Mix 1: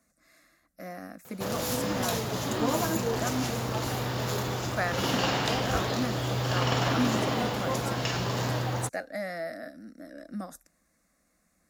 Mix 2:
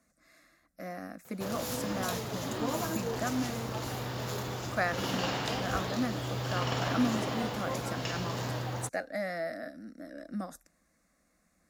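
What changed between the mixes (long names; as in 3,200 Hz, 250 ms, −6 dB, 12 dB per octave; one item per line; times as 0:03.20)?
speech: add high-shelf EQ 8,200 Hz −5.5 dB
background −5.5 dB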